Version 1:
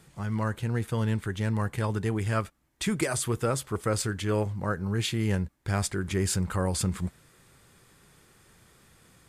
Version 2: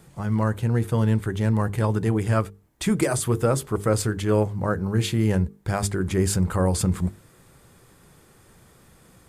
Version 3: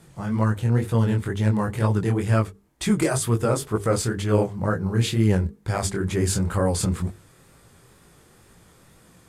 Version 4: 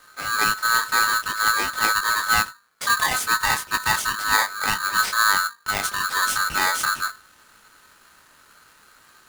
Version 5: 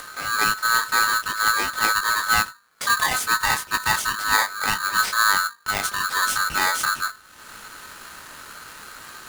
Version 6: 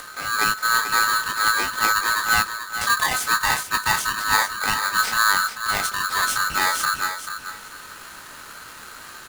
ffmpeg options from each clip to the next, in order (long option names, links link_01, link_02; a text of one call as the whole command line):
ffmpeg -i in.wav -filter_complex "[0:a]highshelf=frequency=9800:gain=7,bandreject=frequency=50:width_type=h:width=6,bandreject=frequency=100:width_type=h:width=6,bandreject=frequency=150:width_type=h:width=6,bandreject=frequency=200:width_type=h:width=6,bandreject=frequency=250:width_type=h:width=6,bandreject=frequency=300:width_type=h:width=6,bandreject=frequency=350:width_type=h:width=6,bandreject=frequency=400:width_type=h:width=6,bandreject=frequency=450:width_type=h:width=6,acrossover=split=1100[link_01][link_02];[link_01]acontrast=85[link_03];[link_03][link_02]amix=inputs=2:normalize=0" out.wav
ffmpeg -i in.wav -af "aemphasis=mode=reproduction:type=50fm,flanger=delay=17.5:depth=7.9:speed=2.1,crystalizer=i=2.5:c=0,volume=2.5dB" out.wav
ffmpeg -i in.wav -af "aeval=exprs='val(0)*sgn(sin(2*PI*1400*n/s))':channel_layout=same" out.wav
ffmpeg -i in.wav -af "acompressor=mode=upward:threshold=-28dB:ratio=2.5" out.wav
ffmpeg -i in.wav -af "aecho=1:1:437|874|1311:0.355|0.0781|0.0172" out.wav